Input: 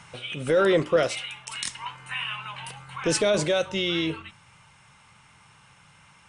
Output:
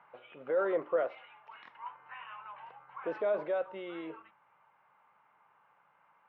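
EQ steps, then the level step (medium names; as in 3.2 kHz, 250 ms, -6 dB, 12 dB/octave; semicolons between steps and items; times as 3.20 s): high-pass 620 Hz 12 dB/octave; low-pass 1.1 kHz 12 dB/octave; distance through air 320 m; -2.5 dB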